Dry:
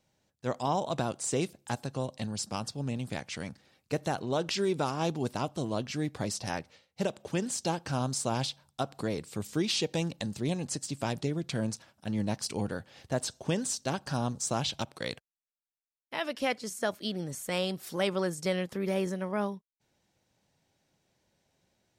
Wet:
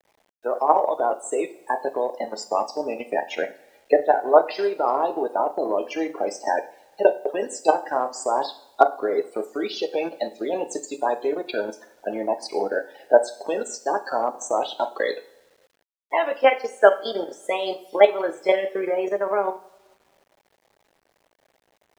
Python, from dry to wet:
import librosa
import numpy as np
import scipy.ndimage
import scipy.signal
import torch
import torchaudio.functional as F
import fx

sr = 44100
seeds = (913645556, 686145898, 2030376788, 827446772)

p1 = fx.wow_flutter(x, sr, seeds[0], rate_hz=2.1, depth_cents=98.0)
p2 = fx.spec_topn(p1, sr, count=32)
p3 = fx.rider(p2, sr, range_db=4, speed_s=0.5)
p4 = p2 + F.gain(torch.from_numpy(p3), 0.0).numpy()
p5 = fx.peak_eq(p4, sr, hz=670.0, db=13.0, octaves=2.9)
p6 = fx.level_steps(p5, sr, step_db=11)
p7 = scipy.signal.sosfilt(scipy.signal.butter(4, 340.0, 'highpass', fs=sr, output='sos'), p6)
p8 = fx.rev_double_slope(p7, sr, seeds[1], early_s=0.47, late_s=1.6, knee_db=-18, drr_db=4.0)
p9 = fx.transient(p8, sr, attack_db=1, sustain_db=-5)
p10 = fx.peak_eq(p9, sr, hz=1900.0, db=3.5, octaves=1.8)
p11 = fx.quant_dither(p10, sr, seeds[2], bits=10, dither='none')
y = F.gain(torch.from_numpy(p11), -1.0).numpy()